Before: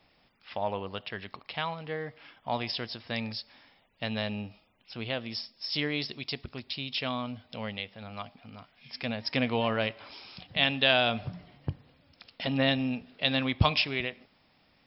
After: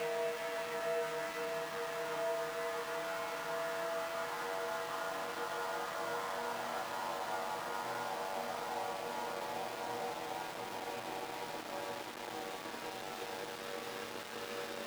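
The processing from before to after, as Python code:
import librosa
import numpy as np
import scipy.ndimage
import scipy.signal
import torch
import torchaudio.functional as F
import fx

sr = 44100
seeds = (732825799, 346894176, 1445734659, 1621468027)

p1 = fx.echo_pitch(x, sr, ms=514, semitones=6, count=2, db_per_echo=-3.0)
p2 = p1 + fx.echo_single(p1, sr, ms=147, db=-13.5, dry=0)
p3 = fx.env_lowpass_down(p2, sr, base_hz=590.0, full_db=-25.5)
p4 = scipy.signal.sosfilt(scipy.signal.butter(2, 4900.0, 'lowpass', fs=sr, output='sos'), p3)
p5 = fx.comb_fb(p4, sr, f0_hz=95.0, decay_s=1.0, harmonics='all', damping=0.0, mix_pct=90)
p6 = fx.paulstretch(p5, sr, seeds[0], factor=14.0, window_s=1.0, from_s=1.93)
p7 = fx.low_shelf(p6, sr, hz=410.0, db=-7.5)
p8 = np.where(np.abs(p7) >= 10.0 ** (-53.0 / 20.0), p7, 0.0)
p9 = fx.low_shelf(p8, sr, hz=200.0, db=-9.5)
p10 = fx.band_squash(p9, sr, depth_pct=40)
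y = p10 * 10.0 ** (11.5 / 20.0)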